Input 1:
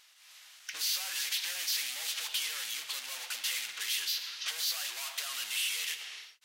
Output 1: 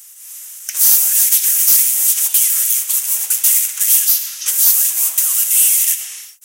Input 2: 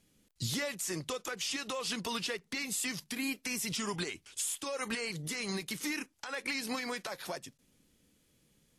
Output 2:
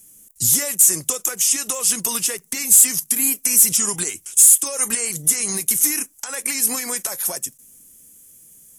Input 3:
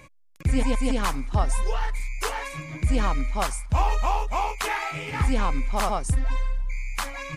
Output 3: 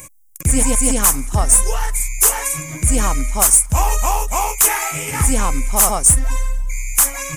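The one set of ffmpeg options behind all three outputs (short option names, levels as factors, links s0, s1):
-af "aexciter=amount=13:drive=4.7:freq=6300,acontrast=84,volume=0.891"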